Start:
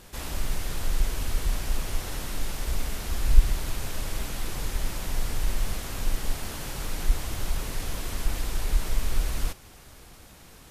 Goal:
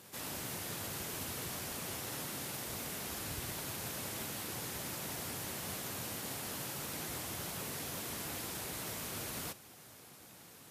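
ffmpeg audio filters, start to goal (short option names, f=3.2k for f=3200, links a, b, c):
-af "highpass=f=110:w=0.5412,highpass=f=110:w=1.3066,highshelf=f=11k:g=9,volume=-6dB" -ar 44100 -c:a aac -b:a 64k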